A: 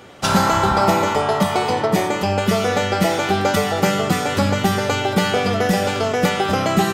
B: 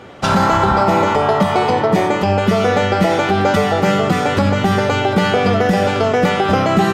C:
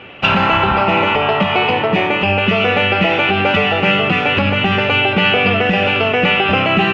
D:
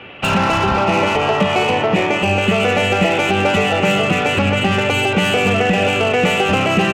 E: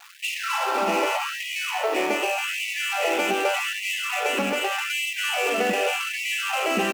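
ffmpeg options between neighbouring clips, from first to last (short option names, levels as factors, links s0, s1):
-af "lowpass=f=2500:p=1,alimiter=limit=0.316:level=0:latency=1:release=68,volume=1.88"
-af "lowpass=f=2700:t=q:w=10,volume=0.794"
-filter_complex "[0:a]acrossover=split=320|790[s0][s1][s2];[s1]aecho=1:1:251:0.531[s3];[s2]asoftclip=type=tanh:threshold=0.158[s4];[s0][s3][s4]amix=inputs=3:normalize=0"
-af "adynamicsmooth=sensitivity=3:basefreq=1200,acrusher=bits=5:mix=0:aa=0.000001,afftfilt=real='re*gte(b*sr/1024,200*pow(1900/200,0.5+0.5*sin(2*PI*0.84*pts/sr)))':imag='im*gte(b*sr/1024,200*pow(1900/200,0.5+0.5*sin(2*PI*0.84*pts/sr)))':win_size=1024:overlap=0.75,volume=0.473"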